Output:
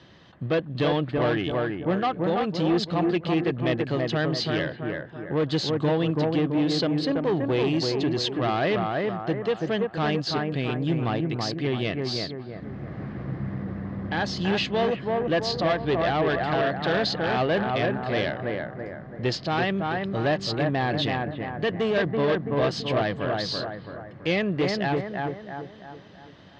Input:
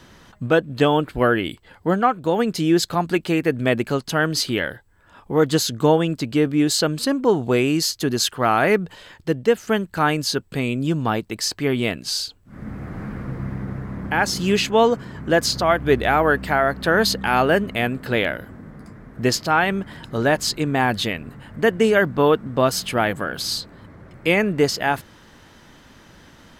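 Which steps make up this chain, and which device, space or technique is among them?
analogue delay pedal into a guitar amplifier (bucket-brigade delay 332 ms, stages 4,096, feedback 44%, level −4 dB; tube saturation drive 15 dB, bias 0.3; loudspeaker in its box 97–4,400 Hz, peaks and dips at 240 Hz −7 dB, 440 Hz −4 dB, 930 Hz −6 dB, 1,400 Hz −9 dB, 2,300 Hz −5 dB)

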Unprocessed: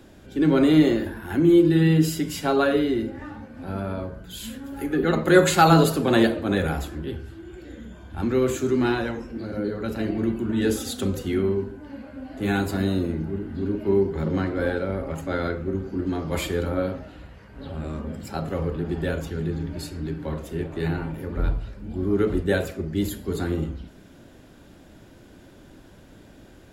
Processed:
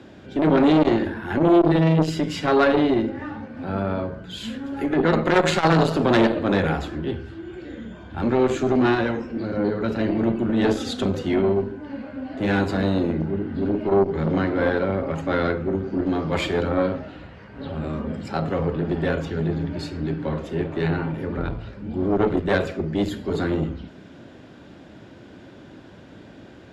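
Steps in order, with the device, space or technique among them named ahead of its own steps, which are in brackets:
valve radio (band-pass filter 94–4,300 Hz; tube saturation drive 15 dB, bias 0.5; saturating transformer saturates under 510 Hz)
level +7.5 dB

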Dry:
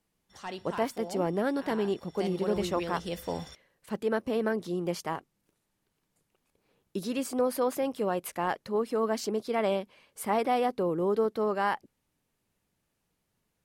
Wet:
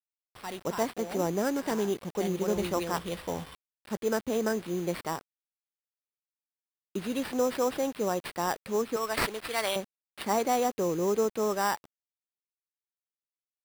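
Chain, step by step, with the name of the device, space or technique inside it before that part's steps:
0:08.96–0:09.76: meter weighting curve ITU-R 468
early 8-bit sampler (sample-rate reduction 6,600 Hz, jitter 0%; bit reduction 8 bits)

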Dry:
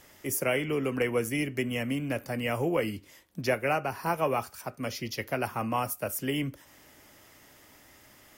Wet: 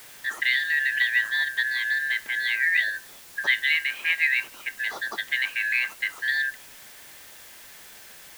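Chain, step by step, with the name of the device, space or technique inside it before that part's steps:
split-band scrambled radio (band-splitting scrambler in four parts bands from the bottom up 4123; band-pass filter 340–3,100 Hz; white noise bed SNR 20 dB)
level +5.5 dB

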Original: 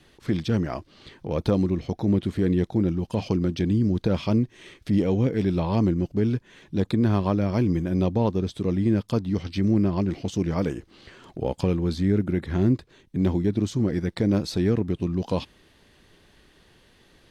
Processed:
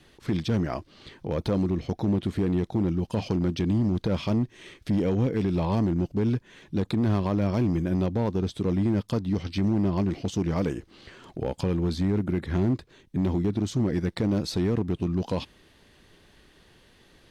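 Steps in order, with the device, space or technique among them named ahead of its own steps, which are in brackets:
limiter into clipper (brickwall limiter −16 dBFS, peak gain reduction 4.5 dB; hard clipping −18.5 dBFS, distortion −21 dB)

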